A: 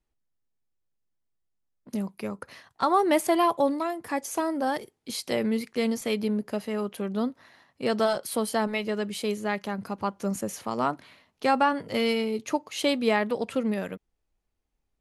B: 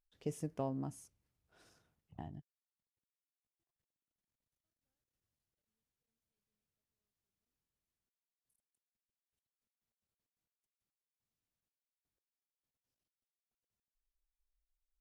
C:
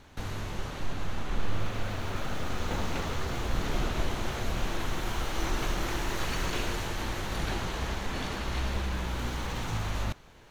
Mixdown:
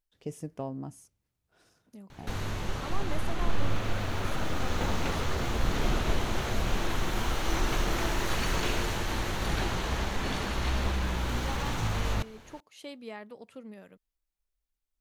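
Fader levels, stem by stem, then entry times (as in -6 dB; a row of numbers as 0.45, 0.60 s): -18.5, +2.0, +2.0 dB; 0.00, 0.00, 2.10 s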